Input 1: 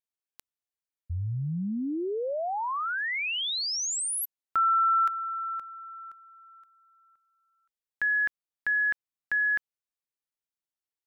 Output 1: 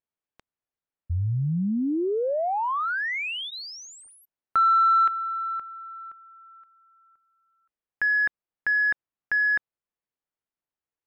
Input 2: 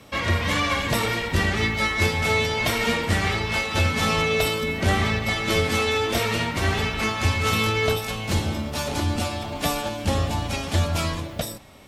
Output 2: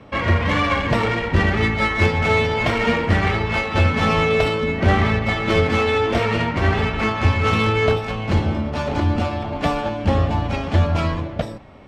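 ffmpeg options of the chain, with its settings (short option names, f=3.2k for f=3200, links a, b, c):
-af "bandreject=f=3.7k:w=22,adynamicsmooth=sensitivity=0.5:basefreq=2.3k,volume=5.5dB"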